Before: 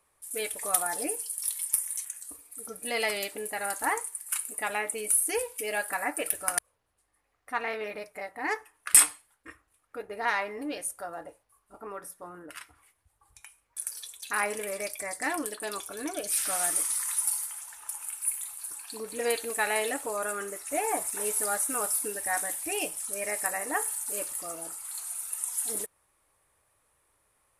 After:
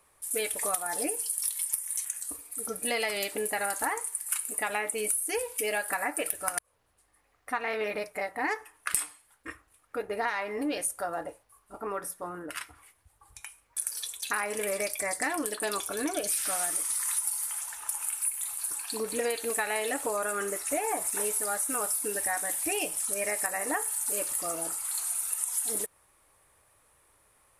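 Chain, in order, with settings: compression 16:1, threshold -32 dBFS, peak gain reduction 20.5 dB; trim +6 dB

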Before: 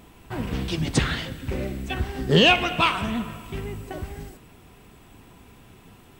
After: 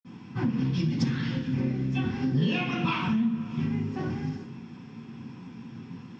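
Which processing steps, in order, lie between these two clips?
cabinet simulation 100–5800 Hz, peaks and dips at 120 Hz +4 dB, 180 Hz +5 dB, 640 Hz -8 dB, 5.3 kHz +9 dB; reverberation, pre-delay 46 ms; compression 5:1, threshold -32 dBFS, peak gain reduction 17 dB; trim +7.5 dB

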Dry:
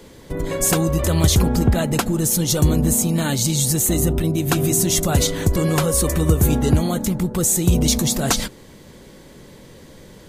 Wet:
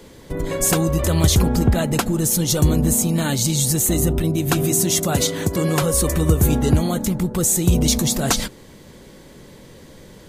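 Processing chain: 4.63–5.82 s: high-pass 120 Hz 12 dB/octave

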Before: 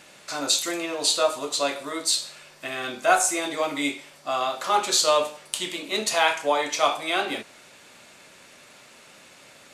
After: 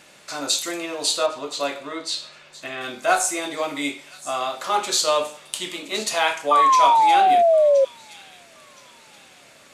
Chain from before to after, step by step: 1.26–2.81 s: low-pass 4.3 kHz 12 dB/octave; 6.51–7.85 s: painted sound fall 530–1200 Hz -15 dBFS; on a send: feedback echo behind a high-pass 1021 ms, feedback 37%, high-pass 2.7 kHz, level -15 dB

